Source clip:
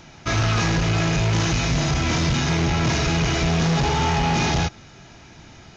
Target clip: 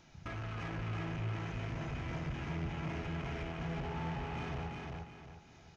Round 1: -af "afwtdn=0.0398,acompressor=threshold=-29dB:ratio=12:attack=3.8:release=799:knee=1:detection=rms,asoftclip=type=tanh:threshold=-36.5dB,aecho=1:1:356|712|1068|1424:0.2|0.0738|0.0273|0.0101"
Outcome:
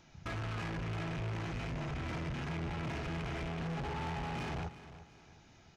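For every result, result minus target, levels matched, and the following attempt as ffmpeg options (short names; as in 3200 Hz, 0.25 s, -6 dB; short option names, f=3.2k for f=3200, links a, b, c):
echo-to-direct -11.5 dB; compressor: peak gain reduction -7 dB
-af "afwtdn=0.0398,acompressor=threshold=-29dB:ratio=12:attack=3.8:release=799:knee=1:detection=rms,asoftclip=type=tanh:threshold=-36.5dB,aecho=1:1:356|712|1068|1424|1780:0.75|0.277|0.103|0.038|0.0141"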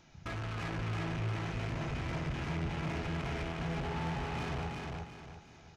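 compressor: peak gain reduction -7 dB
-af "afwtdn=0.0398,acompressor=threshold=-36.5dB:ratio=12:attack=3.8:release=799:knee=1:detection=rms,asoftclip=type=tanh:threshold=-36.5dB,aecho=1:1:356|712|1068|1424|1780:0.75|0.277|0.103|0.038|0.0141"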